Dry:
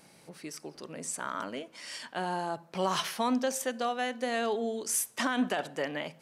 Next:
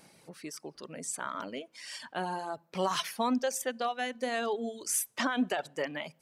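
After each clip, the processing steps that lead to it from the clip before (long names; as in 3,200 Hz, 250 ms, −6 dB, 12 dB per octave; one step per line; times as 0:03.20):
reverb reduction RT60 1.1 s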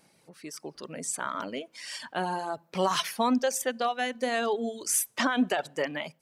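automatic gain control gain up to 9 dB
level −5 dB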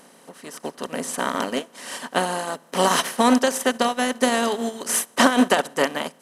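compressor on every frequency bin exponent 0.4
expander for the loud parts 2.5 to 1, over −34 dBFS
level +7 dB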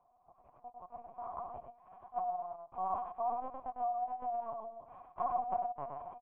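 formant resonators in series a
single-tap delay 106 ms −3.5 dB
linear-prediction vocoder at 8 kHz pitch kept
level −8 dB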